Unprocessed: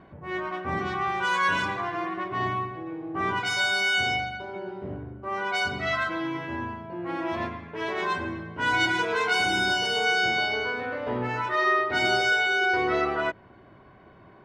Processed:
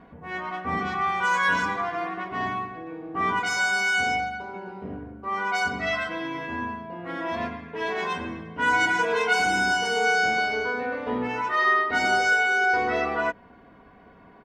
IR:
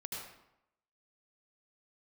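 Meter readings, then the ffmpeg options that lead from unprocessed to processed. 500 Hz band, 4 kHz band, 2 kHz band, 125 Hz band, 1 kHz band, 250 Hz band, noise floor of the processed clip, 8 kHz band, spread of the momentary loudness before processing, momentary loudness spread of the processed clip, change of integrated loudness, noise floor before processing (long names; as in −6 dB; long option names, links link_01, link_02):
+0.5 dB, −4.0 dB, +2.0 dB, −3.5 dB, +2.5 dB, −0.5 dB, −52 dBFS, +3.0 dB, 12 LU, 14 LU, +1.5 dB, −52 dBFS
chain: -af "aecho=1:1:4.2:0.63"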